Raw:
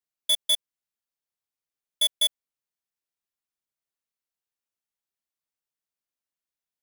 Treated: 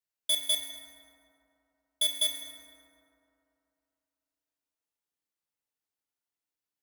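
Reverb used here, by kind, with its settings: FDN reverb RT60 2.8 s, high-frequency decay 0.4×, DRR 0 dB; trim -3.5 dB

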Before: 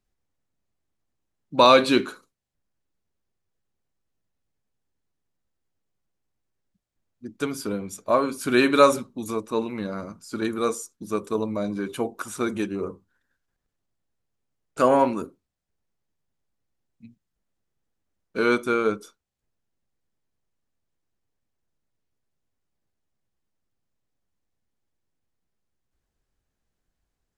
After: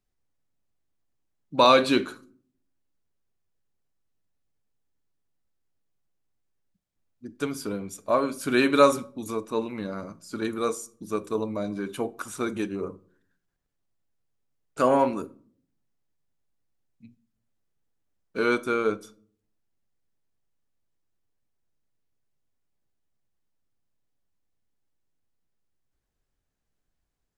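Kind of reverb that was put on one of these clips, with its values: simulated room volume 670 m³, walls furnished, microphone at 0.33 m; trim -2.5 dB

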